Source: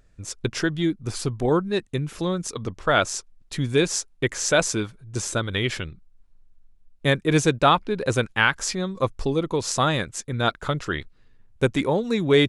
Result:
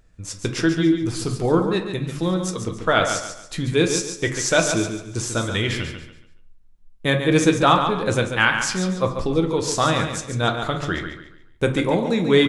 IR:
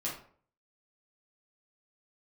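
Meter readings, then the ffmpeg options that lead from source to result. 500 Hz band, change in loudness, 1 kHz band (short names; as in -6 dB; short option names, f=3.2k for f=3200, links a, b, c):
+2.0 dB, +2.5 dB, +2.5 dB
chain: -filter_complex "[0:a]aecho=1:1:141|282|423|564:0.398|0.127|0.0408|0.013,asplit=2[a][b];[1:a]atrim=start_sample=2205[c];[b][c]afir=irnorm=-1:irlink=0,volume=-5dB[d];[a][d]amix=inputs=2:normalize=0,volume=-2dB"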